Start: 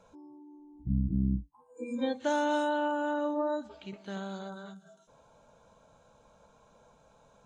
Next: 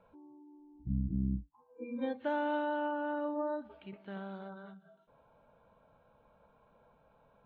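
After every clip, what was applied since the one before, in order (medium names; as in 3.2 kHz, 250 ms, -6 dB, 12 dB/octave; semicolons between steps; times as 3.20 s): low-pass 2.9 kHz 24 dB/octave; trim -4.5 dB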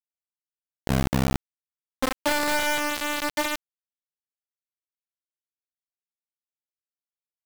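bit crusher 5-bit; trim +8.5 dB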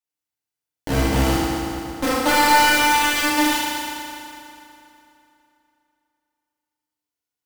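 FDN reverb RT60 3 s, high-frequency decay 0.8×, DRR -9 dB; trim -1 dB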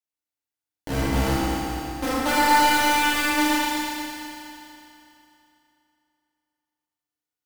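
echo whose repeats swap between lows and highs 115 ms, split 2.3 kHz, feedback 72%, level -3 dB; trim -5.5 dB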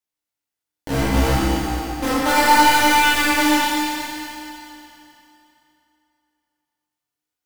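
chorus 0.65 Hz, delay 15.5 ms, depth 7.1 ms; trim +7.5 dB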